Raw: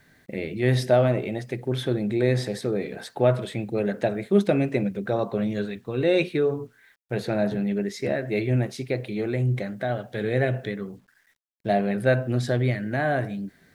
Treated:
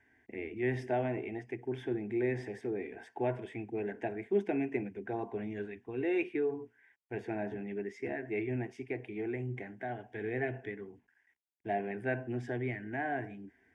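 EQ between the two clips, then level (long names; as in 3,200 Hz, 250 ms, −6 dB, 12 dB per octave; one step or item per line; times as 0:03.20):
high-pass filter 56 Hz
low-pass filter 4,100 Hz 12 dB per octave
phaser with its sweep stopped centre 830 Hz, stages 8
−7.0 dB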